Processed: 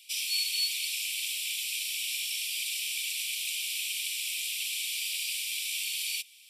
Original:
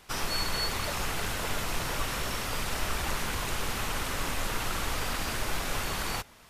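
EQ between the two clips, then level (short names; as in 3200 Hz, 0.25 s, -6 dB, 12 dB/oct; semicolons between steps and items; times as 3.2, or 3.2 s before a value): rippled Chebyshev high-pass 2300 Hz, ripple 3 dB; notch 6500 Hz, Q 5.9; +6.5 dB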